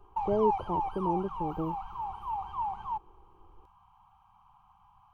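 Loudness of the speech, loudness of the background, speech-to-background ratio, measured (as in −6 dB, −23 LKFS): −33.0 LKFS, −35.0 LKFS, 2.0 dB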